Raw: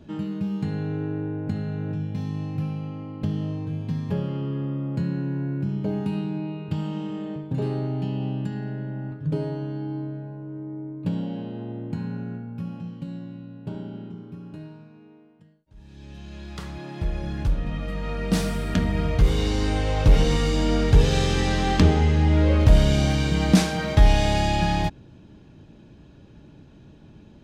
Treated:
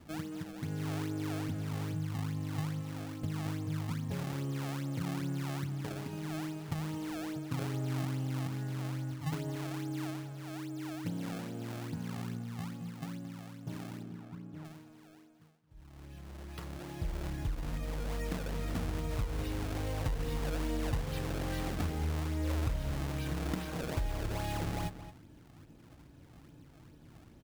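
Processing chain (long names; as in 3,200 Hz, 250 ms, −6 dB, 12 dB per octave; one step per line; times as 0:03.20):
downward compressor 6 to 1, threshold −24 dBFS, peak gain reduction 14.5 dB
notch comb filter 200 Hz
sample-and-hold swept by an LFO 26×, swing 160% 2.4 Hz
0:14.03–0:14.65: high-shelf EQ 2,600 Hz −12 dB
slap from a distant wall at 38 metres, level −12 dB
level −6.5 dB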